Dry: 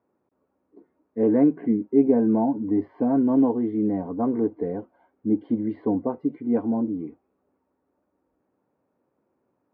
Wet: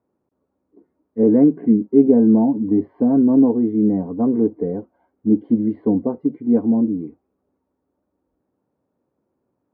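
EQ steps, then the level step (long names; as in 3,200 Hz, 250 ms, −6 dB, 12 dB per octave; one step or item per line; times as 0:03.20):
spectral tilt −2 dB per octave
dynamic equaliser 440 Hz, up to +5 dB, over −31 dBFS, Q 1.6
dynamic equaliser 200 Hz, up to +7 dB, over −30 dBFS, Q 1.6
−3.0 dB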